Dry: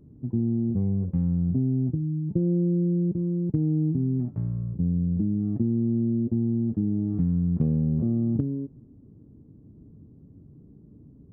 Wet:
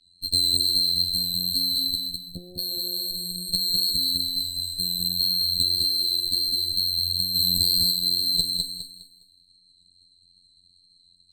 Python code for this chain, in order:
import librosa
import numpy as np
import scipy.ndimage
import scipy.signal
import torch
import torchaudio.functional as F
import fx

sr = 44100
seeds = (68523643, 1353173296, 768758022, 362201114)

y = fx.band_swap(x, sr, width_hz=4000)
y = fx.rider(y, sr, range_db=10, speed_s=2.0)
y = fx.cheby_harmonics(y, sr, harmonics=(2, 7, 8), levels_db=(-7, -19, -19), full_scale_db=-11.5)
y = fx.cheby_ripple(y, sr, hz=700.0, ripple_db=3, at=(1.96, 2.59))
y = fx.robotise(y, sr, hz=88.8)
y = fx.wow_flutter(y, sr, seeds[0], rate_hz=2.1, depth_cents=28.0)
y = fx.echo_feedback(y, sr, ms=205, feedback_pct=31, wet_db=-3.5)
y = fx.env_flatten(y, sr, amount_pct=70, at=(7.34, 7.91), fade=0.02)
y = y * librosa.db_to_amplitude(2.0)